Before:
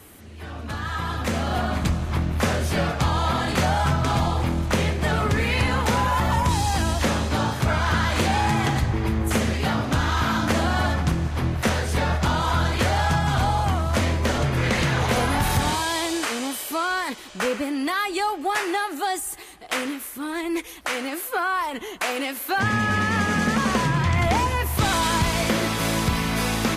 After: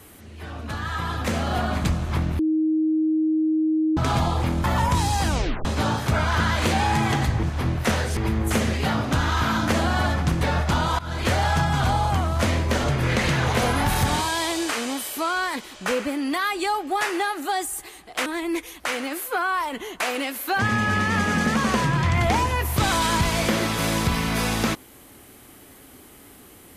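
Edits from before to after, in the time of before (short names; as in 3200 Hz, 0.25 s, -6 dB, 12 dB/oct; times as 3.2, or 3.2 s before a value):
2.39–3.97 bleep 314 Hz -18 dBFS
4.64–6.18 cut
6.82 tape stop 0.37 s
11.21–11.95 move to 8.97
12.53–12.84 fade in, from -22 dB
19.8–20.27 cut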